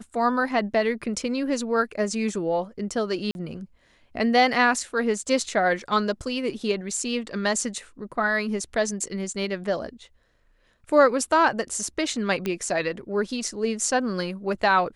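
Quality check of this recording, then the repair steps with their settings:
3.31–3.35 gap 41 ms
12.46 pop -14 dBFS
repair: de-click; interpolate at 3.31, 41 ms

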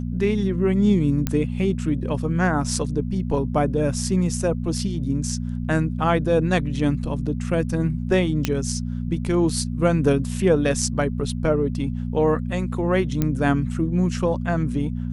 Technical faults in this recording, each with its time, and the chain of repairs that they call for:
hum 60 Hz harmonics 4 -27 dBFS
1.27 pop -8 dBFS
8.45 pop -7 dBFS
13.22 pop -9 dBFS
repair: de-click; de-hum 60 Hz, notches 4

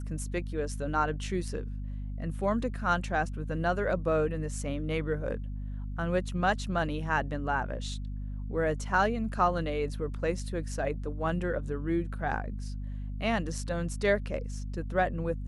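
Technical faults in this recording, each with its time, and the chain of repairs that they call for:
hum 50 Hz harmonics 5 -36 dBFS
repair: de-hum 50 Hz, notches 5

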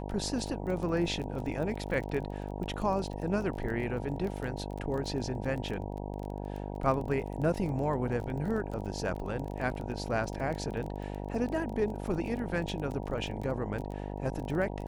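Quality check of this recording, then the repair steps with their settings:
buzz 50 Hz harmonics 19 -38 dBFS
crackle 21/s -36 dBFS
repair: de-click; de-hum 50 Hz, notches 19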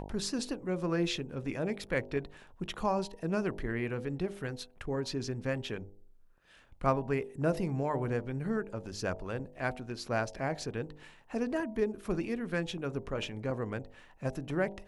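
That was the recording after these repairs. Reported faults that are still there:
none

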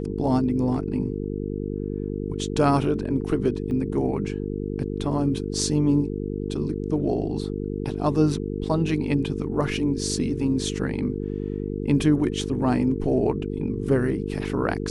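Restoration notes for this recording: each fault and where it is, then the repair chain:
buzz 50 Hz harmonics 9 -29 dBFS
3.71 gap 2 ms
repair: de-hum 50 Hz, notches 9; interpolate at 3.71, 2 ms

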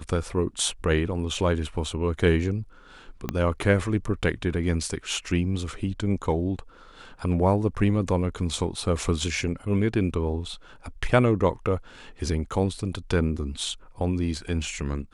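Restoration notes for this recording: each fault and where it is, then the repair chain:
3.29 pop -13 dBFS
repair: de-click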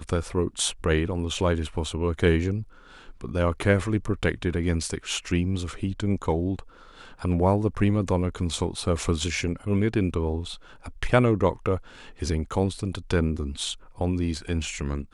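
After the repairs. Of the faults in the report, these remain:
3.29 pop

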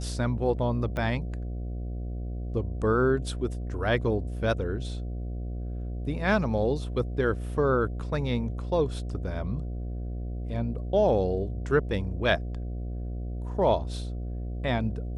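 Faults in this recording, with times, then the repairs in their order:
buzz 60 Hz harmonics 12 -33 dBFS
0.97 pop -20 dBFS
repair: de-click; de-hum 60 Hz, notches 12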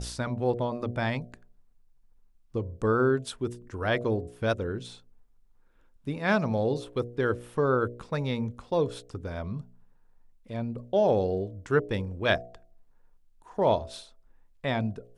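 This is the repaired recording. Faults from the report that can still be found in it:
0.97 pop

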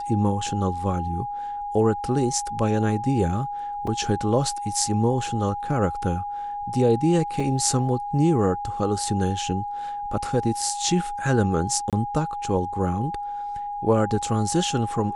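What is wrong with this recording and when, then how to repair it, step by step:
tone 820 Hz -28 dBFS
3.87 gap 4 ms
7.4 gap 2.8 ms
11.9–11.93 gap 27 ms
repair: notch 820 Hz, Q 30; interpolate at 3.87, 4 ms; interpolate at 7.4, 2.8 ms; interpolate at 11.9, 27 ms

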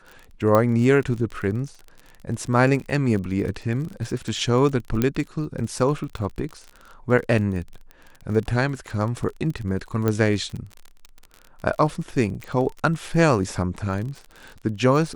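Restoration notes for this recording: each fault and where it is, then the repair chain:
crackle 36/s -30 dBFS
0.55 pop -8 dBFS
5.02 pop -8 dBFS
10.08 pop -10 dBFS
12.44 pop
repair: de-click

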